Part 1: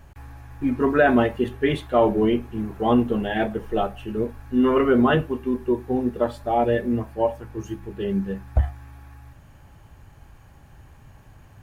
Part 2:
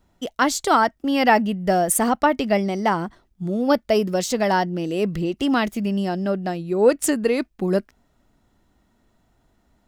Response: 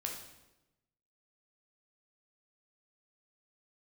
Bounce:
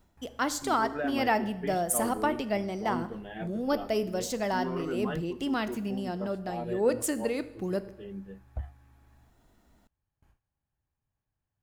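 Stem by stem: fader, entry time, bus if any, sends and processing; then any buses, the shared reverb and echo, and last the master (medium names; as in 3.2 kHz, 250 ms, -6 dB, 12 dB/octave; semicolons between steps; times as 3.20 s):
-16.5 dB, 0.00 s, no send, gate with hold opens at -36 dBFS
-1.5 dB, 0.00 s, send -18.5 dB, treble shelf 9.8 kHz +5.5 dB; auto duck -11 dB, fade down 0.20 s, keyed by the first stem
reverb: on, RT60 0.95 s, pre-delay 10 ms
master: none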